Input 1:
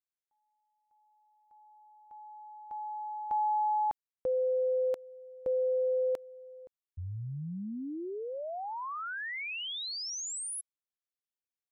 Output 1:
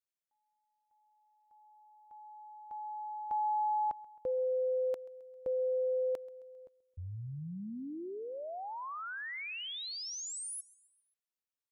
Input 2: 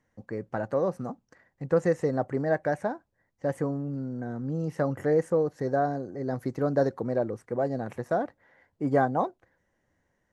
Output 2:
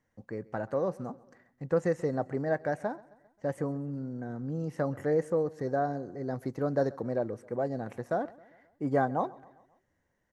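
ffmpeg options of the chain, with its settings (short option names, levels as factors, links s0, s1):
-af "aecho=1:1:133|266|399|532:0.0794|0.0421|0.0223|0.0118,volume=0.668"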